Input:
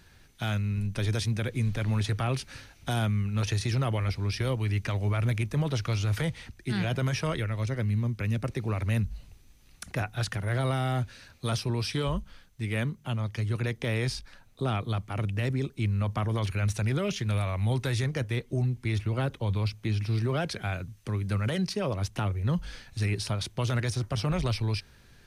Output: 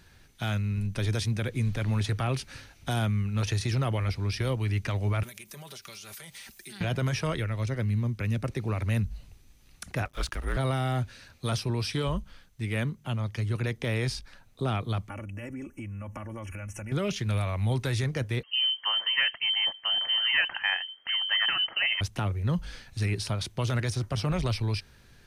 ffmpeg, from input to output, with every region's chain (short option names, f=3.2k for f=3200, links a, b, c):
-filter_complex "[0:a]asettb=1/sr,asplit=3[a][b][c];[a]atrim=end=5.234[d];[b]atrim=start=5.23:end=6.81,asetpts=PTS-STARTPTS,afade=t=in:d=0.004:c=qsin,afade=t=out:st=1.576:d=0.004:c=qsin,aemphasis=mode=production:type=riaa,aecho=1:1:5.1:0.59,atrim=end_sample=69678,acompressor=threshold=-40dB:ratio=20:attack=3.2:release=140:knee=1:detection=peak[e];[c]atrim=start=6.806[f];[d][e]acrossfade=d=0.004:c1=hsin:c2=qsin[g];[g][f]acrossfade=d=0.004:c1=qsin:c2=hsin,asettb=1/sr,asplit=3[h][i][j];[h]atrim=end=10.054[k];[i]atrim=start=10.05:end=10.57,asetpts=PTS-STARTPTS,afade=t=in:d=0.004:c=qsin,afade=t=out:st=0.516:d=0.004:c=qsin,afreqshift=-160,aeval=exprs='sgn(val(0))*max(abs(val(0))-0.00355,0)':c=same[l];[j]atrim=start=10.566[m];[k][l]acrossfade=d=0.004:c1=hsin:c2=qsin[n];[n][m]acrossfade=d=0.004:c1=qsin:c2=hsin,asettb=1/sr,asplit=3[o][p][q];[o]atrim=end=15.094[r];[p]atrim=start=15.09:end=16.92,asetpts=PTS-STARTPTS,afade=t=in:d=0.004:c=qsin,afade=t=out:st=1.826:d=0.004:c=qsin,aecho=1:1:3.5:0.78,atrim=end_sample=80703,acompressor=threshold=-35dB:ratio=6:attack=3.2:release=140:knee=1:detection=peak,asuperstop=centerf=4100:order=8:qfactor=1.5[s];[q]atrim=start=16.916[t];[r][s]acrossfade=d=0.004:c1=hsin:c2=qsin[u];[u][t]acrossfade=d=0.004:c1=qsin:c2=hsin,asettb=1/sr,asplit=3[v][w][x];[v]atrim=end=18.434[y];[w]atrim=start=18.43:end=22.01,asetpts=PTS-STARTPTS,afade=t=in:d=0.004:c=qsin,afade=t=out:st=3.576:d=0.004:c=qsin,equalizer=f=1.3k:w=1.7:g=13,lowpass=f=2.7k:t=q:w=0.5098,lowpass=f=2.7k:t=q:w=0.6013,lowpass=f=2.7k:t=q:w=0.9,lowpass=f=2.7k:t=q:w=2.563,afreqshift=-3200[z];[x]atrim=start=22.006[aa];[y][z]acrossfade=d=0.004:c1=hsin:c2=qsin[ab];[ab][aa]acrossfade=d=0.004:c1=qsin:c2=hsin"